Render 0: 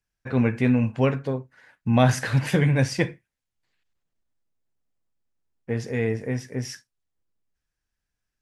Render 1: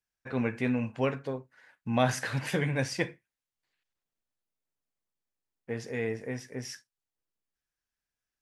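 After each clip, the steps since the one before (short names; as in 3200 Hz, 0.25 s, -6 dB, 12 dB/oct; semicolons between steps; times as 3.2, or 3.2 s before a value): low shelf 200 Hz -10 dB; gain -4.5 dB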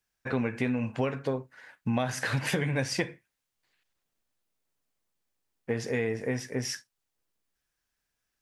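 compressor 10:1, threshold -32 dBFS, peak gain reduction 14 dB; gain +7.5 dB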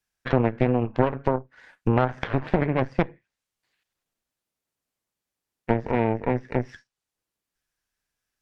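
treble ducked by the level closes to 1100 Hz, closed at -28 dBFS; added harmonics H 3 -14 dB, 4 -10 dB, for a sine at -15.5 dBFS; gain +7.5 dB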